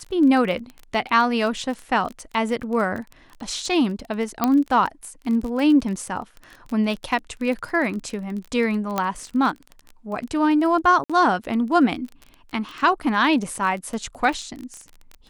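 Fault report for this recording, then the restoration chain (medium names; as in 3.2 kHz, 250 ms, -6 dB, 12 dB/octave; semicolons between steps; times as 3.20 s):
crackle 22 per s -28 dBFS
4.44 s: pop -5 dBFS
8.98 s: pop -8 dBFS
11.04–11.10 s: dropout 56 ms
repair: de-click; interpolate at 11.04 s, 56 ms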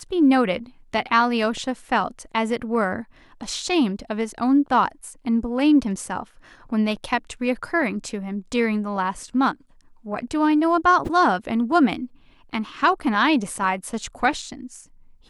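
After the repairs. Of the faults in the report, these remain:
nothing left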